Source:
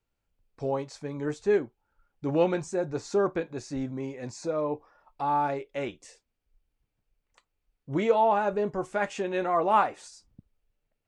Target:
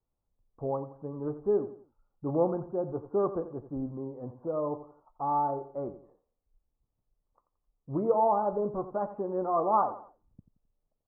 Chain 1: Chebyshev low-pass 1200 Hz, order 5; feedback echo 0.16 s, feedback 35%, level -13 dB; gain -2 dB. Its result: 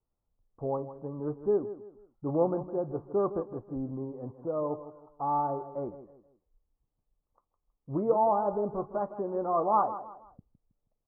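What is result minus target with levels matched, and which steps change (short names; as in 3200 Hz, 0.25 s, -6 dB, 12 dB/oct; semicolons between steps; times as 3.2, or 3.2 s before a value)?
echo 73 ms late
change: feedback echo 87 ms, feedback 35%, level -13 dB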